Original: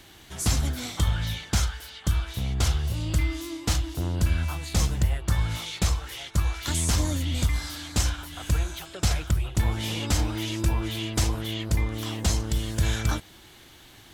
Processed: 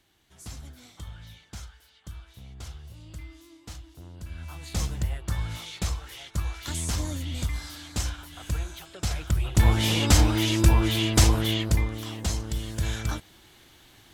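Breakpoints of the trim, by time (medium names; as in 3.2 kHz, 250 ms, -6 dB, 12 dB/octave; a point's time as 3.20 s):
4.25 s -17 dB
4.68 s -5 dB
9.12 s -5 dB
9.68 s +6 dB
11.50 s +6 dB
12.04 s -4 dB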